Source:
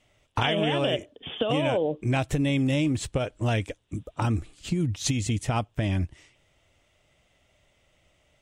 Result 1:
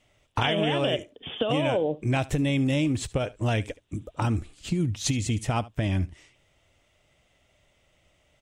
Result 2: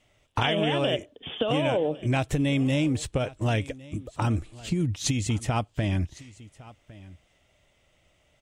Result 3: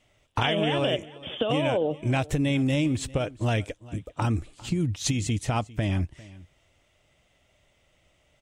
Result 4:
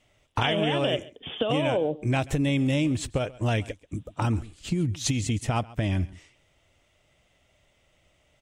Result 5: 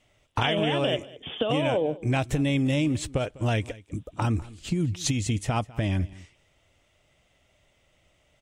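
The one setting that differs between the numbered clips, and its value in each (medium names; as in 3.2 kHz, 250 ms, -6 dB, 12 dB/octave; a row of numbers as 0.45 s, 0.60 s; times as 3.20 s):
delay, time: 73 ms, 1108 ms, 400 ms, 135 ms, 200 ms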